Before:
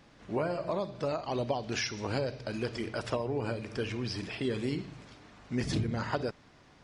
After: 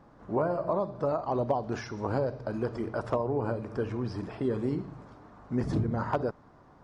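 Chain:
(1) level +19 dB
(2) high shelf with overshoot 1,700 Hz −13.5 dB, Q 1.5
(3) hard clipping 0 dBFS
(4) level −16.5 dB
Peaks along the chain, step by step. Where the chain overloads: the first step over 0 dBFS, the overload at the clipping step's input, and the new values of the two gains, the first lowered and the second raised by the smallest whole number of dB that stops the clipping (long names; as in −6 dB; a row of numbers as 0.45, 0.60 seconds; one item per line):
+2.0, +3.5, 0.0, −16.5 dBFS
step 1, 3.5 dB
step 1 +15 dB, step 4 −12.5 dB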